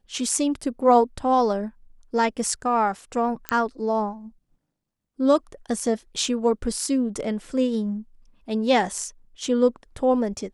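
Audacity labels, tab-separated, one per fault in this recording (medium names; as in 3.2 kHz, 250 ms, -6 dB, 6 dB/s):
3.490000	3.490000	pop -8 dBFS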